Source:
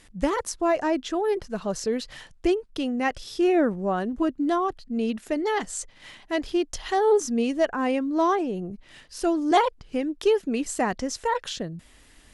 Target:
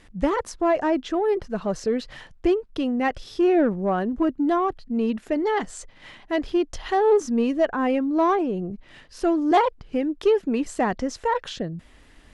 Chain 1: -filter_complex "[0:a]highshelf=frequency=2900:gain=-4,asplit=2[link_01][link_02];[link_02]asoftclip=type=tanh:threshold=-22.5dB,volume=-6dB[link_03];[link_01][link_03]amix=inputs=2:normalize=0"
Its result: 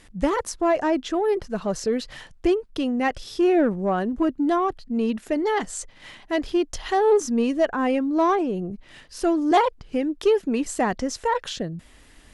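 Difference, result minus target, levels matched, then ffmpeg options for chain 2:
4,000 Hz band +2.5 dB
-filter_complex "[0:a]lowpass=frequency=3700:poles=1,highshelf=frequency=2900:gain=-4,asplit=2[link_01][link_02];[link_02]asoftclip=type=tanh:threshold=-22.5dB,volume=-6dB[link_03];[link_01][link_03]amix=inputs=2:normalize=0"

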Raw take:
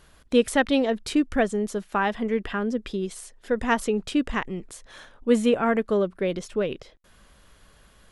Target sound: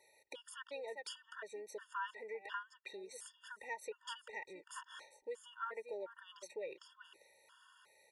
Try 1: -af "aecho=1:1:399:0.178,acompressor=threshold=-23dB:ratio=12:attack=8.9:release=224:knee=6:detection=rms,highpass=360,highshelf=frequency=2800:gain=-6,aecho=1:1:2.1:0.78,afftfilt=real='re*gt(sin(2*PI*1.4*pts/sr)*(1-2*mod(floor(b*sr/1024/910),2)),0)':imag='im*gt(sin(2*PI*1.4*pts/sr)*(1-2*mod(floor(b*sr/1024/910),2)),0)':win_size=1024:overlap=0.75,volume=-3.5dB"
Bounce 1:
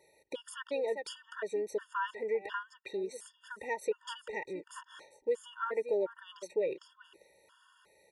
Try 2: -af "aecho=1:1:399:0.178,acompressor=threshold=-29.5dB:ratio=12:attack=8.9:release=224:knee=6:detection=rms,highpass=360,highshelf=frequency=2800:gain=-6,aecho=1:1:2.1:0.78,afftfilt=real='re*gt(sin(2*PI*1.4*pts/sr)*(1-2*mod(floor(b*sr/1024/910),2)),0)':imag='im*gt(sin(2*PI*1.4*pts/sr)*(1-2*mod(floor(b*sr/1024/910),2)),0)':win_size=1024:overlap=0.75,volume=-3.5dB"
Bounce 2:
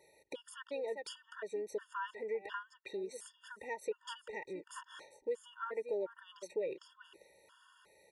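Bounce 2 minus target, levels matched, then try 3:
1,000 Hz band −3.5 dB
-af "aecho=1:1:399:0.178,acompressor=threshold=-29.5dB:ratio=12:attack=8.9:release=224:knee=6:detection=rms,highpass=760,highshelf=frequency=2800:gain=-6,aecho=1:1:2.1:0.78,afftfilt=real='re*gt(sin(2*PI*1.4*pts/sr)*(1-2*mod(floor(b*sr/1024/910),2)),0)':imag='im*gt(sin(2*PI*1.4*pts/sr)*(1-2*mod(floor(b*sr/1024/910),2)),0)':win_size=1024:overlap=0.75,volume=-3.5dB"

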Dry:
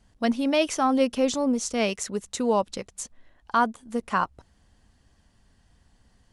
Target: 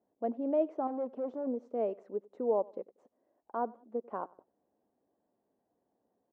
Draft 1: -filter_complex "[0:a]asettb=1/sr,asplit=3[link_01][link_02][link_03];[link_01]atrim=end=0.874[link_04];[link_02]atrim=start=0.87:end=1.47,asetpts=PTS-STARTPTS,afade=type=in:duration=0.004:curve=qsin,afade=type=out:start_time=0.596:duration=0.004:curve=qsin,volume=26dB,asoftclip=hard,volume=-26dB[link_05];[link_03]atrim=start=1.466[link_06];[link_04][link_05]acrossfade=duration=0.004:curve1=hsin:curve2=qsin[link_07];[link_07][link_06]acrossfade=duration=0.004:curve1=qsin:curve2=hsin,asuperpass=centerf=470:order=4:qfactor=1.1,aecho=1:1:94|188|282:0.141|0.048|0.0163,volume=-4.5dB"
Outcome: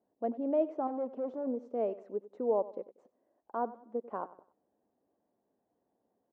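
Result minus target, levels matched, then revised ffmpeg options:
echo-to-direct +6.5 dB
-filter_complex "[0:a]asettb=1/sr,asplit=3[link_01][link_02][link_03];[link_01]atrim=end=0.874[link_04];[link_02]atrim=start=0.87:end=1.47,asetpts=PTS-STARTPTS,afade=type=in:duration=0.004:curve=qsin,afade=type=out:start_time=0.596:duration=0.004:curve=qsin,volume=26dB,asoftclip=hard,volume=-26dB[link_05];[link_03]atrim=start=1.466[link_06];[link_04][link_05]acrossfade=duration=0.004:curve1=hsin:curve2=qsin[link_07];[link_07][link_06]acrossfade=duration=0.004:curve1=qsin:curve2=hsin,asuperpass=centerf=470:order=4:qfactor=1.1,aecho=1:1:94|188:0.0668|0.0227,volume=-4.5dB"

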